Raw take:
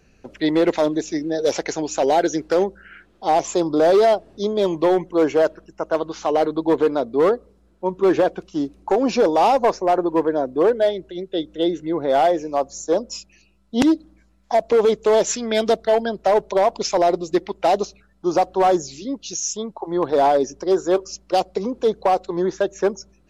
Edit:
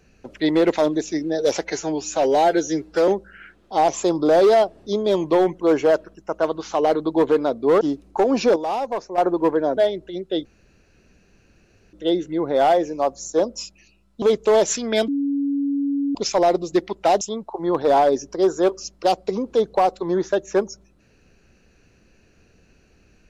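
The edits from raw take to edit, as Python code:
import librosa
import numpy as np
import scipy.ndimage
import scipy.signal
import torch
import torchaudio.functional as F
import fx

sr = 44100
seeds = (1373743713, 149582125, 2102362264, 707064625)

y = fx.edit(x, sr, fx.stretch_span(start_s=1.61, length_s=0.98, factor=1.5),
    fx.cut(start_s=7.32, length_s=1.21),
    fx.clip_gain(start_s=9.28, length_s=0.62, db=-8.5),
    fx.cut(start_s=10.49, length_s=0.3),
    fx.insert_room_tone(at_s=11.47, length_s=1.48),
    fx.cut(start_s=13.76, length_s=1.05),
    fx.bleep(start_s=15.67, length_s=1.07, hz=281.0, db=-19.0),
    fx.cut(start_s=17.8, length_s=1.69), tone=tone)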